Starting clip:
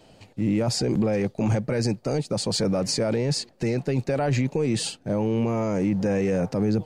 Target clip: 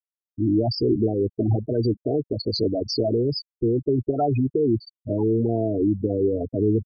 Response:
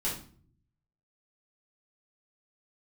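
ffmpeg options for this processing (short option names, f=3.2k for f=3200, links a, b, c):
-af "afftfilt=real='re*gte(hypot(re,im),0.141)':imag='im*gte(hypot(re,im),0.141)':win_size=1024:overlap=0.75,aecho=1:1:2.8:0.92,volume=1.5dB"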